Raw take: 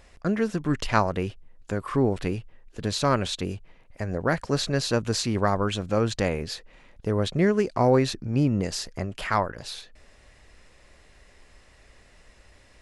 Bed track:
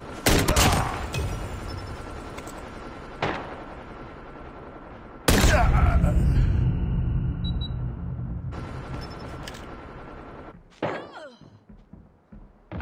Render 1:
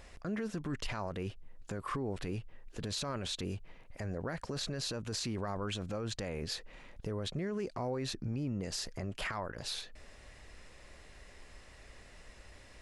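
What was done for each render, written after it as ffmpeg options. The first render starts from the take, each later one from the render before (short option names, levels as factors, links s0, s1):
-af "acompressor=threshold=0.0178:ratio=2,alimiter=level_in=1.58:limit=0.0631:level=0:latency=1:release=13,volume=0.631"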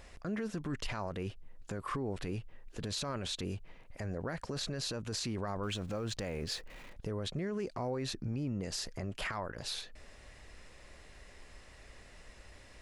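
-filter_complex "[0:a]asettb=1/sr,asplit=3[s0][s1][s2];[s0]atrim=end=5.634[s3];[s1]atrim=start=5.63:end=6.93,asetpts=PTS-STARTPTS,afade=t=in:d=0.004:c=qsin,afade=t=out:st=1.296:d=0.004:c=qsin,aeval=exprs='val(0)+0.5*0.002*sgn(val(0))':c=same[s4];[s2]atrim=start=6.926[s5];[s3][s4]acrossfade=d=0.004:c1=hsin:c2=qsin[s6];[s6][s5]acrossfade=d=0.004:c1=qsin:c2=hsin"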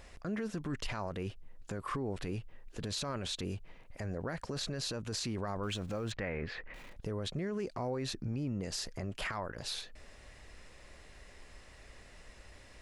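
-filter_complex "[0:a]asettb=1/sr,asplit=3[s0][s1][s2];[s0]atrim=end=6.124[s3];[s1]atrim=start=6.12:end=6.74,asetpts=PTS-STARTPTS,afade=t=in:d=0.004:c=qsin,afade=t=out:st=0.616:d=0.004:c=qsin,lowpass=f=2000:t=q:w=2.5[s4];[s2]atrim=start=6.736[s5];[s3][s4]acrossfade=d=0.004:c1=hsin:c2=qsin[s6];[s6][s5]acrossfade=d=0.004:c1=qsin:c2=hsin"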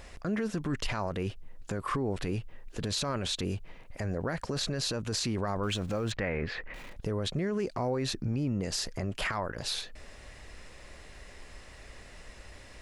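-af "volume=1.88"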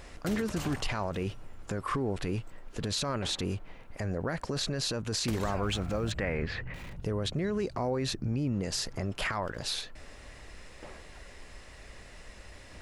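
-filter_complex "[1:a]volume=0.0944[s0];[0:a][s0]amix=inputs=2:normalize=0"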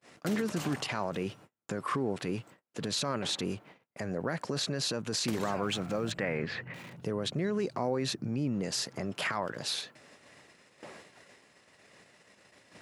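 -af "highpass=f=130:w=0.5412,highpass=f=130:w=1.3066,agate=range=0.0141:threshold=0.00282:ratio=16:detection=peak"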